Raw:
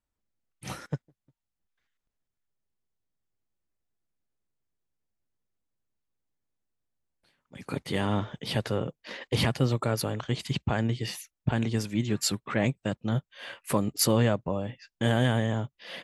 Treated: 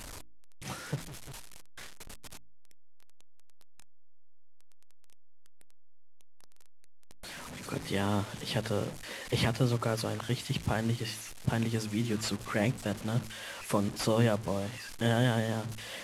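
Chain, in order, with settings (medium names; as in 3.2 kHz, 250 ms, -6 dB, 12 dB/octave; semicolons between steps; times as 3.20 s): one-bit delta coder 64 kbps, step -35 dBFS; de-hum 54.88 Hz, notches 6; trim -2.5 dB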